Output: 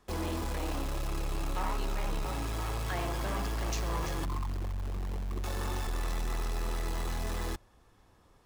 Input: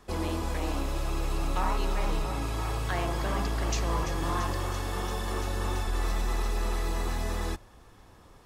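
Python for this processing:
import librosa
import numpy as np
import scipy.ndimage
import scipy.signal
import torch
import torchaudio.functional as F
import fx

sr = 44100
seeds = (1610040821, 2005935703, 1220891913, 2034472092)

p1 = fx.envelope_sharpen(x, sr, power=3.0, at=(4.25, 5.44))
p2 = fx.quant_companded(p1, sr, bits=2)
p3 = p1 + F.gain(torch.from_numpy(p2), -5.0).numpy()
y = F.gain(torch.from_numpy(p3), -8.5).numpy()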